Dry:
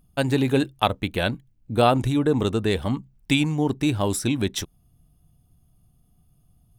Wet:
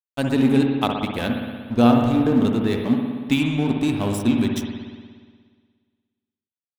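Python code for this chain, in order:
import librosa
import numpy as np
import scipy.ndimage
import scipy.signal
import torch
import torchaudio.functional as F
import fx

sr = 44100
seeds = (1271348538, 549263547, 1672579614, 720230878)

y = fx.peak_eq(x, sr, hz=240.0, db=14.0, octaves=0.28)
y = np.sign(y) * np.maximum(np.abs(y) - 10.0 ** (-32.5 / 20.0), 0.0)
y = fx.rev_spring(y, sr, rt60_s=1.7, pass_ms=(59,), chirp_ms=65, drr_db=2.0)
y = fx.resample_linear(y, sr, factor=3, at=(1.22, 3.4))
y = F.gain(torch.from_numpy(y), -2.0).numpy()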